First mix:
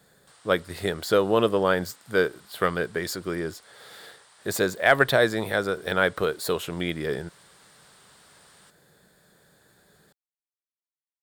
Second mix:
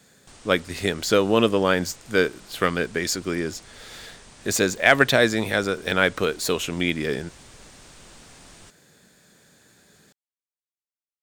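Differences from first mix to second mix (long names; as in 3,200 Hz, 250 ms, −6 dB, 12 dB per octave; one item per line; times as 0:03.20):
background: remove high-pass filter 1,100 Hz 12 dB per octave
master: add graphic EQ with 15 bands 100 Hz +3 dB, 250 Hz +8 dB, 2,500 Hz +9 dB, 6,300 Hz +12 dB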